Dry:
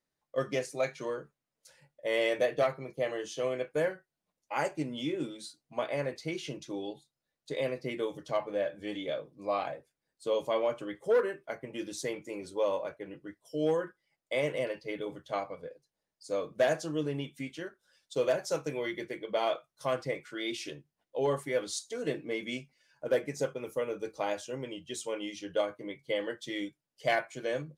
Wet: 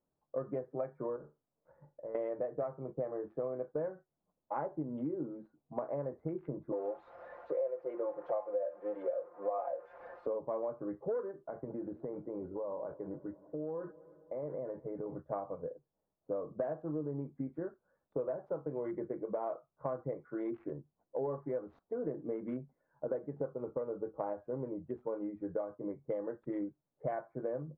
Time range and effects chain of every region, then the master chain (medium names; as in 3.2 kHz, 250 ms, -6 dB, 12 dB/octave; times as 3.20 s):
1.16–2.15 s: waveshaping leveller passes 1 + compression 4:1, threshold -46 dBFS + flutter echo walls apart 6.9 m, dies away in 0.24 s
6.72–10.27 s: zero-crossing glitches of -27.5 dBFS + resonant high-pass 550 Hz, resonance Q 2.9 + comb 5.7 ms, depth 89%
11.31–15.19 s: compression 5:1, threshold -39 dBFS + multi-head delay 106 ms, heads second and third, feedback 64%, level -23 dB
whole clip: local Wiener filter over 15 samples; low-pass 1.2 kHz 24 dB/octave; compression 6:1, threshold -38 dBFS; trim +4 dB